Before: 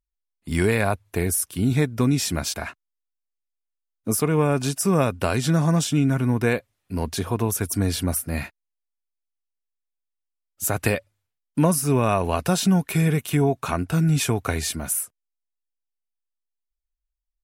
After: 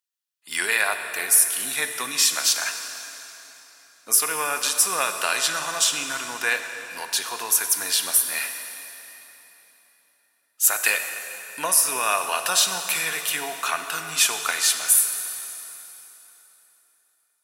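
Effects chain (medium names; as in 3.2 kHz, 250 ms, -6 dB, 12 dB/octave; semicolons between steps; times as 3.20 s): high-pass 1.5 kHz 12 dB/octave; band-stop 2.2 kHz, Q 12; plate-style reverb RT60 3.6 s, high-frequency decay 0.85×, DRR 6 dB; trim +8 dB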